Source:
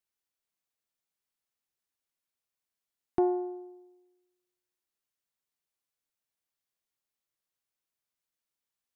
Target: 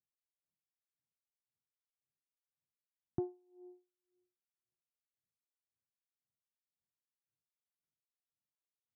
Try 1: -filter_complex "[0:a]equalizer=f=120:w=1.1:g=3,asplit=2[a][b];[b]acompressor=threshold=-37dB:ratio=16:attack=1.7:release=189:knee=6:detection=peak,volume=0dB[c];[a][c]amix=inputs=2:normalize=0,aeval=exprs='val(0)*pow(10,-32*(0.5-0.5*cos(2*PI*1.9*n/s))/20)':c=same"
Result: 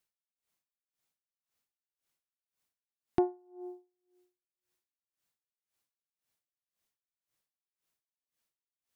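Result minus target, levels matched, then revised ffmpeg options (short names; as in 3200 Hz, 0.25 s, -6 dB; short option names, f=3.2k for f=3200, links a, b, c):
125 Hz band -9.5 dB
-filter_complex "[0:a]bandpass=f=120:t=q:w=1.4:csg=0,equalizer=f=120:w=1.1:g=3,asplit=2[a][b];[b]acompressor=threshold=-37dB:ratio=16:attack=1.7:release=189:knee=6:detection=peak,volume=0dB[c];[a][c]amix=inputs=2:normalize=0,aeval=exprs='val(0)*pow(10,-32*(0.5-0.5*cos(2*PI*1.9*n/s))/20)':c=same"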